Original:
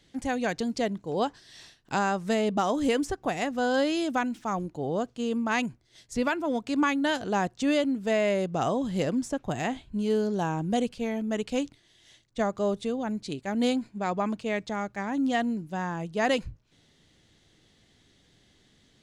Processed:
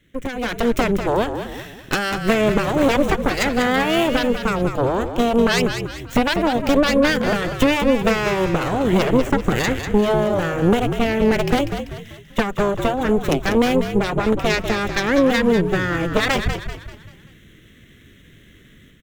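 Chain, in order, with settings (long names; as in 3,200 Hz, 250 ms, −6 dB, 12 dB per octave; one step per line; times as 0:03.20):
running median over 5 samples
downward compressor 10 to 1, threshold −30 dBFS, peak gain reduction 10 dB
phaser with its sweep stopped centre 2,000 Hz, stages 4
harmonic generator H 6 −7 dB, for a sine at −22.5 dBFS
automatic gain control gain up to 11 dB
on a send: echo with shifted repeats 194 ms, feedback 43%, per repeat −54 Hz, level −8 dB
on the sum: level +5 dB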